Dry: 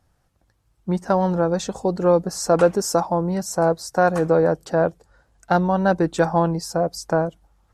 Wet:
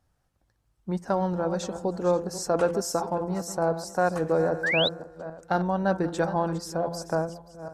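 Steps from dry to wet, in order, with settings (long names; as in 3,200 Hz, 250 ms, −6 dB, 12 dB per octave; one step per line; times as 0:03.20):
feedback delay that plays each chunk backwards 265 ms, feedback 42%, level −12 dB
hum removal 170.5 Hz, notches 14
sound drawn into the spectrogram rise, 0:04.63–0:04.89, 1,500–4,100 Hz −19 dBFS
level −6.5 dB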